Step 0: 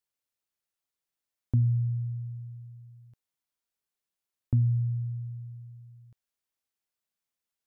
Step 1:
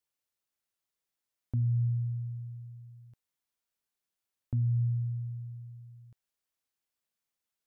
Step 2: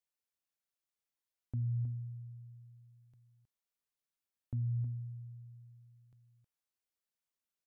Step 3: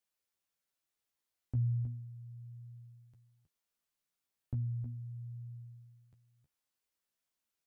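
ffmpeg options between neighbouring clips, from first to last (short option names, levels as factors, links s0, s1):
-af "alimiter=limit=0.0631:level=0:latency=1"
-af "aecho=1:1:316:0.355,volume=0.473"
-af "flanger=delay=8.9:depth=7.2:regen=17:speed=0.36:shape=triangular,volume=2.24"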